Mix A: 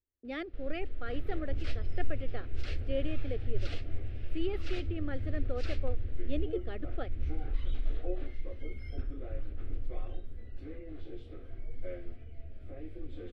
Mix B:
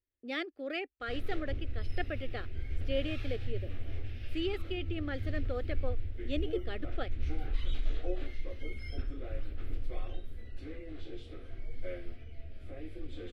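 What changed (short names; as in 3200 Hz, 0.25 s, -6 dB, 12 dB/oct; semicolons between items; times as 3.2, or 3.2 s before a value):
first sound: muted; master: add high shelf 2100 Hz +11 dB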